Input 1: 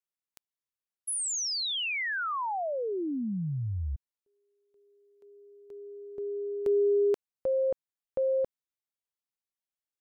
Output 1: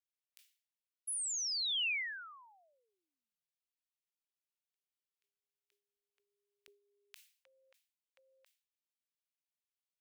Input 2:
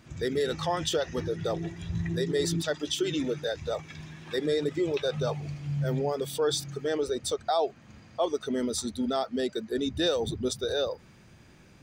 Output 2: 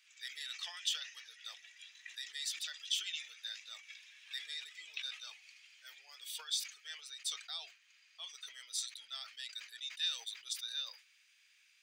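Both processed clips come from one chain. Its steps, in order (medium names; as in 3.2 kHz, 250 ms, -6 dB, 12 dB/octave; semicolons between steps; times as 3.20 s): ladder high-pass 2 kHz, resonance 35%; decay stretcher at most 130 dB/s; trim +1 dB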